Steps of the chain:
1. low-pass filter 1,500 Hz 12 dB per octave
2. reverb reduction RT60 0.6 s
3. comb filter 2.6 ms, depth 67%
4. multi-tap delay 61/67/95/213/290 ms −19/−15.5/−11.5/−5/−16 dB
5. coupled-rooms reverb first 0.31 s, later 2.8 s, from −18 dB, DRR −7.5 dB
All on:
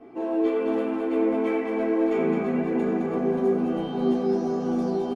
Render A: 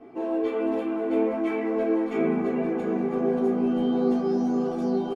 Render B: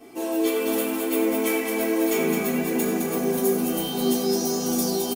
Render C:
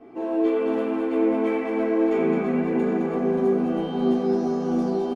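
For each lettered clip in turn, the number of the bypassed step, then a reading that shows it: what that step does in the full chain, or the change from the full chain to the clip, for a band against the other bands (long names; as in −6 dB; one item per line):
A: 4, echo-to-direct ratio 9.5 dB to 7.5 dB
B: 1, 2 kHz band +6.5 dB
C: 2, change in integrated loudness +1.5 LU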